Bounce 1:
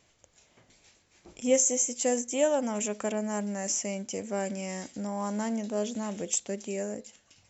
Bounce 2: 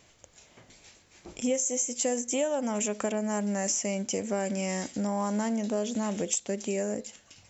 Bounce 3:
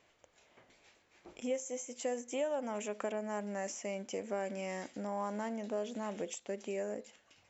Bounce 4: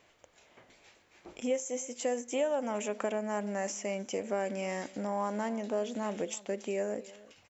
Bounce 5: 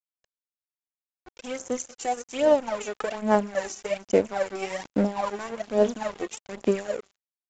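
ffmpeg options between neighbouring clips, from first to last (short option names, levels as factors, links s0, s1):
-af "acompressor=threshold=0.0251:ratio=5,volume=2"
-af "bass=f=250:g=-10,treble=f=4000:g=-12,volume=0.531"
-filter_complex "[0:a]asplit=2[s0][s1];[s1]adelay=309,volume=0.1,highshelf=f=4000:g=-6.95[s2];[s0][s2]amix=inputs=2:normalize=0,volume=1.68"
-af "aphaser=in_gain=1:out_gain=1:delay=2.7:decay=0.78:speed=1.2:type=sinusoidal,aeval=exprs='sgn(val(0))*max(abs(val(0))-0.0119,0)':c=same,volume=1.5" -ar 16000 -c:a pcm_mulaw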